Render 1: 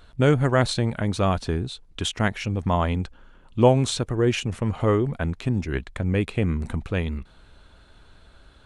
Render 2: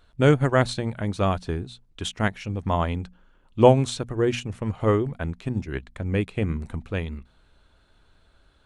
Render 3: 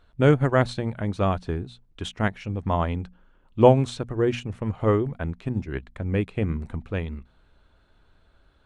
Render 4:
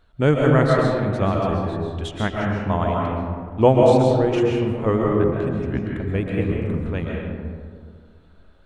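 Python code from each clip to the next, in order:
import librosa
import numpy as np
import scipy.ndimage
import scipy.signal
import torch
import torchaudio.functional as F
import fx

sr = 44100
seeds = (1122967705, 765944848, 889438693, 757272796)

y1 = fx.hum_notches(x, sr, base_hz=60, count=4)
y1 = fx.upward_expand(y1, sr, threshold_db=-34.0, expansion=1.5)
y1 = y1 * 10.0 ** (3.0 / 20.0)
y2 = fx.high_shelf(y1, sr, hz=4000.0, db=-9.5)
y3 = fx.vibrato(y2, sr, rate_hz=7.9, depth_cents=35.0)
y3 = fx.rev_freeverb(y3, sr, rt60_s=2.0, hf_ratio=0.35, predelay_ms=95, drr_db=-2.0)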